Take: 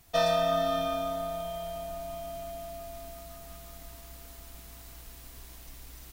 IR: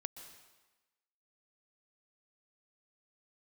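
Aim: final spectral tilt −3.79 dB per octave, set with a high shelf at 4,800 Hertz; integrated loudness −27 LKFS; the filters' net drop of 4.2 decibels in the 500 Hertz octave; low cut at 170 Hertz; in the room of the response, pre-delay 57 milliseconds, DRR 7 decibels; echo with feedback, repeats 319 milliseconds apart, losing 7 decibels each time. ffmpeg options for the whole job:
-filter_complex "[0:a]highpass=170,equalizer=frequency=500:width_type=o:gain=-7,highshelf=frequency=4800:gain=-5,aecho=1:1:319|638|957|1276|1595:0.447|0.201|0.0905|0.0407|0.0183,asplit=2[link_01][link_02];[1:a]atrim=start_sample=2205,adelay=57[link_03];[link_02][link_03]afir=irnorm=-1:irlink=0,volume=-4.5dB[link_04];[link_01][link_04]amix=inputs=2:normalize=0,volume=9dB"

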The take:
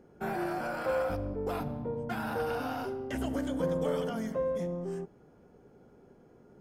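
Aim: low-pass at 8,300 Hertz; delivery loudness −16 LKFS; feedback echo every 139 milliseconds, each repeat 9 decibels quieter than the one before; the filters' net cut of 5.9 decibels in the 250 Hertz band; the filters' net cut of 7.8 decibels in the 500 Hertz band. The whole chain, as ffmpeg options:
ffmpeg -i in.wav -af "lowpass=8300,equalizer=frequency=250:width_type=o:gain=-5.5,equalizer=frequency=500:width_type=o:gain=-7.5,aecho=1:1:139|278|417|556:0.355|0.124|0.0435|0.0152,volume=22.5dB" out.wav

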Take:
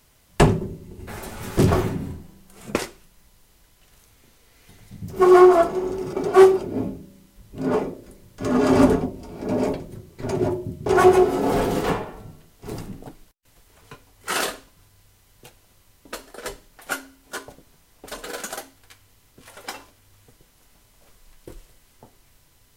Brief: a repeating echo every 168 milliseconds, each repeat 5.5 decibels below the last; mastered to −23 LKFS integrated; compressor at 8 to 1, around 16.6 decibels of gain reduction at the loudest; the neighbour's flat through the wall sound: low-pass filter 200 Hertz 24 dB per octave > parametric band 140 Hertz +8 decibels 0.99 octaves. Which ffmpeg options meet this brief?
ffmpeg -i in.wav -af "acompressor=threshold=-25dB:ratio=8,lowpass=frequency=200:width=0.5412,lowpass=frequency=200:width=1.3066,equalizer=frequency=140:width_type=o:width=0.99:gain=8,aecho=1:1:168|336|504|672|840|1008|1176:0.531|0.281|0.149|0.079|0.0419|0.0222|0.0118,volume=11dB" out.wav

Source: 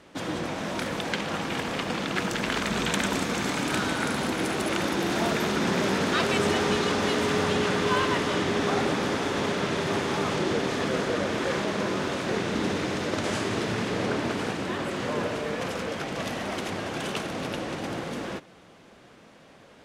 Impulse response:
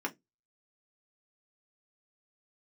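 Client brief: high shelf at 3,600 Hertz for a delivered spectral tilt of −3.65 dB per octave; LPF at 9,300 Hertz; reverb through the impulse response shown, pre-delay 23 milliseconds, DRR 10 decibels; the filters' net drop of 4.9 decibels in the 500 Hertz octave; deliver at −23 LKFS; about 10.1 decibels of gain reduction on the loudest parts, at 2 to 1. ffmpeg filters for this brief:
-filter_complex "[0:a]lowpass=9300,equalizer=frequency=500:width_type=o:gain=-6.5,highshelf=frequency=3600:gain=4.5,acompressor=threshold=-41dB:ratio=2,asplit=2[link_01][link_02];[1:a]atrim=start_sample=2205,adelay=23[link_03];[link_02][link_03]afir=irnorm=-1:irlink=0,volume=-14.5dB[link_04];[link_01][link_04]amix=inputs=2:normalize=0,volume=13dB"

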